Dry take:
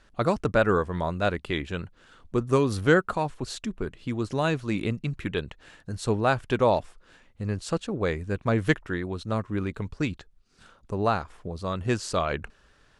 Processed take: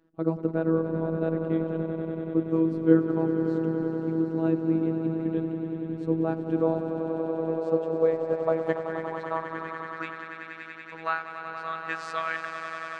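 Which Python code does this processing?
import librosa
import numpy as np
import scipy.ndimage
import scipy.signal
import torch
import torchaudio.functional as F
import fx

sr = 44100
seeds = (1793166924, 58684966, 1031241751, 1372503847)

y = fx.echo_swell(x, sr, ms=95, loudest=5, wet_db=-11.0)
y = fx.filter_sweep_bandpass(y, sr, from_hz=300.0, to_hz=1700.0, start_s=6.99, end_s=10.61, q=2.5)
y = fx.robotise(y, sr, hz=162.0)
y = y * librosa.db_to_amplitude(7.5)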